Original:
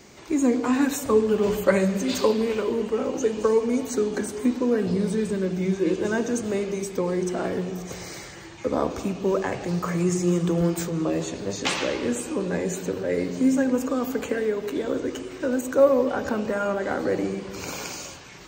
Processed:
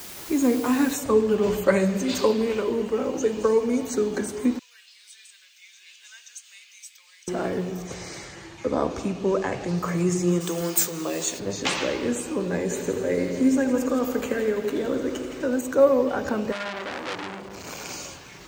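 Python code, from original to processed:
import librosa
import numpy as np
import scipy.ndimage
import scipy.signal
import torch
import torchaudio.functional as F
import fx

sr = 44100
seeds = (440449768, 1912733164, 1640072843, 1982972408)

y = fx.noise_floor_step(x, sr, seeds[0], at_s=0.94, before_db=-40, after_db=-64, tilt_db=0.0)
y = fx.ladder_highpass(y, sr, hz=2200.0, resonance_pct=30, at=(4.59, 7.28))
y = fx.lowpass(y, sr, hz=10000.0, slope=12, at=(7.87, 9.78))
y = fx.riaa(y, sr, side='recording', at=(10.4, 11.38), fade=0.02)
y = fx.echo_heads(y, sr, ms=83, heads='first and second', feedback_pct=63, wet_db=-13.0, at=(12.69, 15.42), fade=0.02)
y = fx.transformer_sat(y, sr, knee_hz=3700.0, at=(16.52, 17.89))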